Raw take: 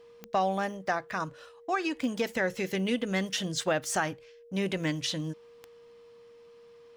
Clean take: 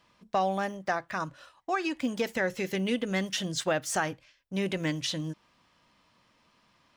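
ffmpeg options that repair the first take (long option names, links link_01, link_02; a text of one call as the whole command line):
ffmpeg -i in.wav -af "adeclick=threshold=4,bandreject=frequency=470:width=30" out.wav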